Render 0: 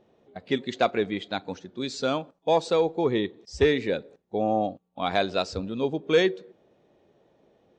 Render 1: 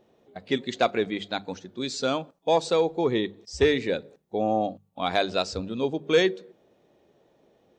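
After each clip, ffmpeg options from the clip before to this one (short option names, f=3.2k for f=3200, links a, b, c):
-af "highshelf=f=6k:g=7.5,bandreject=f=50:t=h:w=6,bandreject=f=100:t=h:w=6,bandreject=f=150:t=h:w=6,bandreject=f=200:t=h:w=6"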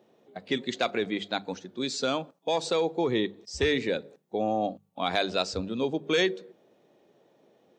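-filter_complex "[0:a]acrossover=split=110|1500[a][b][c];[a]aeval=exprs='sgn(val(0))*max(abs(val(0))-0.00224,0)':c=same[d];[b]alimiter=limit=-19dB:level=0:latency=1[e];[d][e][c]amix=inputs=3:normalize=0"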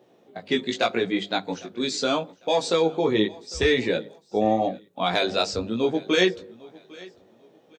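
-af "flanger=delay=16:depth=3.4:speed=0.82,aecho=1:1:802|1604:0.075|0.0225,volume=7.5dB"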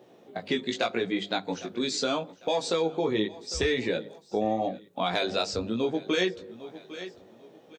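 -af "acompressor=threshold=-33dB:ratio=2,volume=3dB"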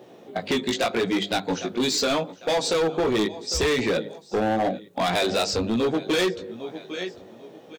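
-af "asoftclip=type=hard:threshold=-26.5dB,volume=7.5dB"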